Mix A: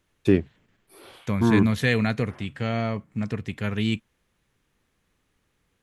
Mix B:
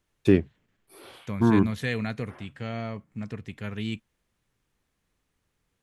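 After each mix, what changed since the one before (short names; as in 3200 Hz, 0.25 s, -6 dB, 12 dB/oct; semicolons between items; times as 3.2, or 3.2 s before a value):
second voice -7.0 dB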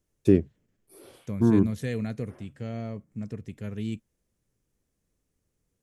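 master: add band shelf 1800 Hz -9.5 dB 2.8 oct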